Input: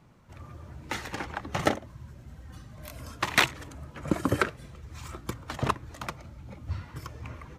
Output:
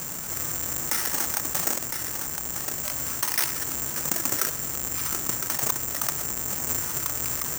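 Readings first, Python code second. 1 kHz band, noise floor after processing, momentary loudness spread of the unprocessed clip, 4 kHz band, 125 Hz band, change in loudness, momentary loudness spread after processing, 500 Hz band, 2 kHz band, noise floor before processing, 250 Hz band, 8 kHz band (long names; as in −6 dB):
−2.0 dB, −33 dBFS, 20 LU, +2.0 dB, −4.5 dB, +6.0 dB, 4 LU, −3.5 dB, −2.5 dB, −51 dBFS, −4.5 dB, +19.0 dB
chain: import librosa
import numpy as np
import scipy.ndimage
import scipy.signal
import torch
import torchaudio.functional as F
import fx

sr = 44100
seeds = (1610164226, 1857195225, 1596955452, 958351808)

y = fx.halfwave_hold(x, sr)
y = fx.rider(y, sr, range_db=3, speed_s=0.5)
y = scipy.signal.sosfilt(scipy.signal.cheby1(6, 6, 6200.0, 'lowpass', fs=sr, output='sos'), y)
y = fx.low_shelf(y, sr, hz=110.0, db=-9.0)
y = y + 10.0 ** (-18.5 / 20.0) * np.pad(y, (int(1010 * sr / 1000.0), 0))[:len(y)]
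y = (np.kron(y[::6], np.eye(6)[0]) * 6)[:len(y)]
y = fx.peak_eq(y, sr, hz=64.0, db=-5.0, octaves=1.9)
y = fx.env_flatten(y, sr, amount_pct=70)
y = F.gain(torch.from_numpy(y), -10.5).numpy()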